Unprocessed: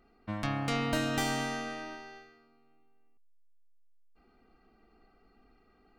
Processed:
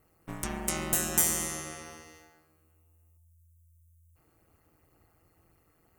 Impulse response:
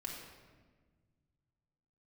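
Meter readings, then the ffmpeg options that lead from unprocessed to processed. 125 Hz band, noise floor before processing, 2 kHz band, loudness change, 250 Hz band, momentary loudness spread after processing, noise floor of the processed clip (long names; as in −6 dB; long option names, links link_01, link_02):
−5.0 dB, −66 dBFS, −3.5 dB, +4.5 dB, −4.5 dB, 20 LU, −69 dBFS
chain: -af "aexciter=amount=12.1:drive=5.8:freq=6400,bandreject=frequency=156.9:width_type=h:width=4,bandreject=frequency=313.8:width_type=h:width=4,bandreject=frequency=470.7:width_type=h:width=4,bandreject=frequency=627.6:width_type=h:width=4,bandreject=frequency=784.5:width_type=h:width=4,bandreject=frequency=941.4:width_type=h:width=4,bandreject=frequency=1098.3:width_type=h:width=4,bandreject=frequency=1255.2:width_type=h:width=4,bandreject=frequency=1412.1:width_type=h:width=4,bandreject=frequency=1569:width_type=h:width=4,bandreject=frequency=1725.9:width_type=h:width=4,aeval=exprs='val(0)*sin(2*PI*83*n/s)':channel_layout=same"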